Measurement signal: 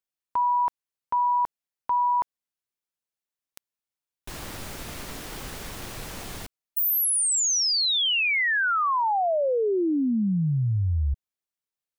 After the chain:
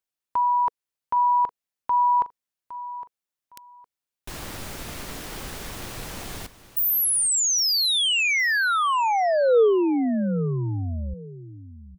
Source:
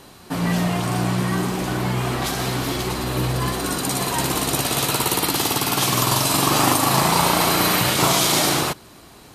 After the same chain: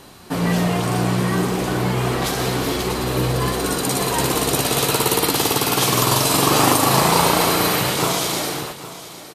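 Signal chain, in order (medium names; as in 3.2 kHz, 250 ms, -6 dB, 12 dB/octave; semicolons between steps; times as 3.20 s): fade out at the end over 2.19 s; dynamic bell 460 Hz, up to +7 dB, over -43 dBFS, Q 3.6; on a send: feedback delay 811 ms, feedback 23%, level -15 dB; on the sum: trim +1.5 dB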